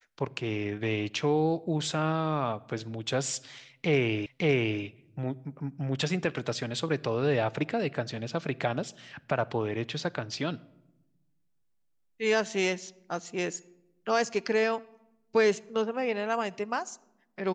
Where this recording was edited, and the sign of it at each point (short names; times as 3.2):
4.26 repeat of the last 0.56 s